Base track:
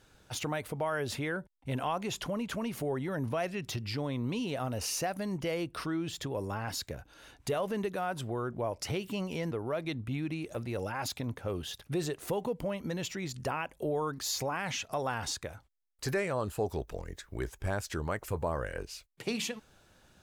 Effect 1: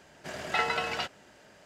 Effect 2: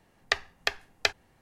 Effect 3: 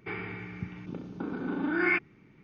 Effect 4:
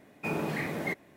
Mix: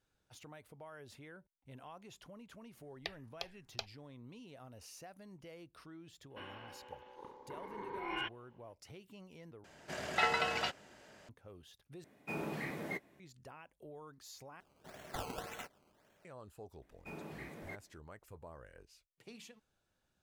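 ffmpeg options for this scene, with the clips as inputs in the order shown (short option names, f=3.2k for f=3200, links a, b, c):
-filter_complex "[1:a]asplit=2[a][b];[4:a]asplit=2[c][d];[0:a]volume=-19.5dB[e];[2:a]asplit=2[f][g];[g]afreqshift=-2.5[h];[f][h]amix=inputs=2:normalize=1[i];[3:a]aeval=exprs='val(0)*sin(2*PI*680*n/s)':c=same[j];[c]asplit=2[k][l];[l]adelay=15,volume=-14dB[m];[k][m]amix=inputs=2:normalize=0[n];[b]acrusher=samples=17:mix=1:aa=0.000001:lfo=1:lforange=17:lforate=1.8[o];[e]asplit=4[p][q][r][s];[p]atrim=end=9.644[t];[a]atrim=end=1.65,asetpts=PTS-STARTPTS,volume=-3dB[u];[q]atrim=start=11.286:end=12.044[v];[n]atrim=end=1.16,asetpts=PTS-STARTPTS,volume=-8.5dB[w];[r]atrim=start=13.196:end=14.604[x];[o]atrim=end=1.65,asetpts=PTS-STARTPTS,volume=-14dB[y];[s]atrim=start=16.246[z];[i]atrim=end=1.41,asetpts=PTS-STARTPTS,volume=-13dB,afade=t=in:d=0.004:c=hsin,afade=t=out:st=1.406:d=0.004:c=hsin,adelay=2740[aa];[j]atrim=end=2.43,asetpts=PTS-STARTPTS,volume=-10.5dB,afade=t=in:d=0.004:c=hsin,afade=t=out:st=2.426:d=0.004:c=hsin,adelay=6300[ab];[d]atrim=end=1.16,asetpts=PTS-STARTPTS,volume=-16dB,afade=t=in:d=0.004:c=hsin,afade=t=out:st=1.156:d=0.004:c=hsin,adelay=16820[ac];[t][u]acrossfade=d=0.004:c1=hsin:c2=hsin[ad];[ad][v]acrossfade=d=0.004:c1=hsin:c2=hsin[ae];[ae][w]acrossfade=d=0.004:c1=hsin:c2=hsin[af];[af][x]acrossfade=d=0.004:c1=hsin:c2=hsin[ag];[ag][y]acrossfade=d=0.004:c1=hsin:c2=hsin[ah];[ah][z]acrossfade=d=0.004:c1=hsin:c2=hsin[ai];[ai][aa][ab][ac]amix=inputs=4:normalize=0"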